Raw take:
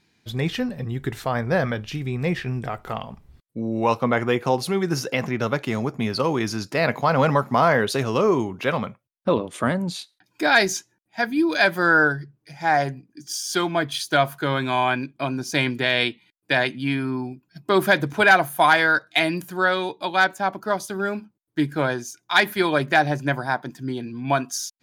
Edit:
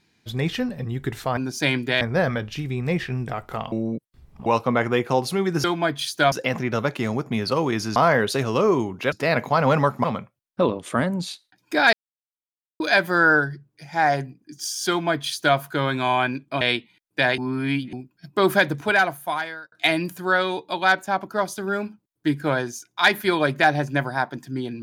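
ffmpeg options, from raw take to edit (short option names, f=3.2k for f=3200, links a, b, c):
-filter_complex "[0:a]asplit=16[a][b][c][d][e][f][g][h][i][j][k][l][m][n][o][p];[a]atrim=end=1.372[q];[b]atrim=start=15.288:end=15.932[r];[c]atrim=start=1.368:end=3.082[s];[d]atrim=start=3.078:end=3.822,asetpts=PTS-STARTPTS,areverse[t];[e]atrim=start=3.818:end=5.002[u];[f]atrim=start=13.568:end=14.252[v];[g]atrim=start=4.998:end=6.642[w];[h]atrim=start=7.558:end=8.722[x];[i]atrim=start=6.638:end=7.562[y];[j]atrim=start=8.718:end=10.61,asetpts=PTS-STARTPTS,afade=t=out:st=1.888:d=0.004:c=hsin[z];[k]atrim=start=10.61:end=11.48,asetpts=PTS-STARTPTS,volume=0[aa];[l]atrim=start=11.48:end=15.292,asetpts=PTS-STARTPTS,afade=t=in:d=0.004:c=hsin[ab];[m]atrim=start=15.928:end=16.702[ac];[n]atrim=start=16.698:end=17.252,asetpts=PTS-STARTPTS,areverse[ad];[o]atrim=start=17.248:end=19.04,asetpts=PTS-STARTPTS,afade=t=out:st=0.622:d=1.17[ae];[p]atrim=start=19.04,asetpts=PTS-STARTPTS,afade=t=in:d=0.004:c=hsin[af];[q][r]acrossfade=d=0.004:c1=hsin:c2=hsin[ag];[ag][s]acrossfade=d=0.004:c1=hsin:c2=hsin[ah];[ah][t]acrossfade=d=0.004:c1=hsin:c2=hsin[ai];[ai][u]acrossfade=d=0.004:c1=hsin:c2=hsin[aj];[aj][v]acrossfade=d=0.004:c1=hsin:c2=hsin[ak];[ak][w]acrossfade=d=0.004:c1=hsin:c2=hsin[al];[al][x]acrossfade=d=0.004:c1=hsin:c2=hsin[am];[am][y]acrossfade=d=0.004:c1=hsin:c2=hsin[an];[z][aa][ab]concat=n=3:v=0:a=1[ao];[an][ao]acrossfade=d=0.004:c1=hsin:c2=hsin[ap];[ap][ac]acrossfade=d=0.004:c1=hsin:c2=hsin[aq];[aq][ad]acrossfade=d=0.004:c1=hsin:c2=hsin[ar];[ae][af]concat=n=2:v=0:a=1[as];[ar][as]acrossfade=d=0.004:c1=hsin:c2=hsin"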